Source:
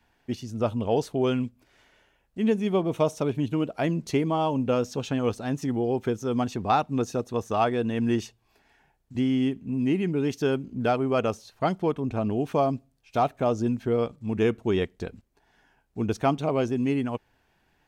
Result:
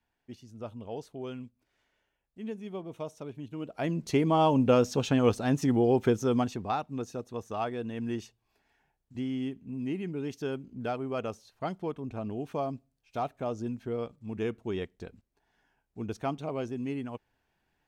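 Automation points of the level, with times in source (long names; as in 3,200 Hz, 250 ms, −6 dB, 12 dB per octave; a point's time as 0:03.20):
0:03.50 −14.5 dB
0:03.79 −6 dB
0:04.42 +2 dB
0:06.24 +2 dB
0:06.76 −9 dB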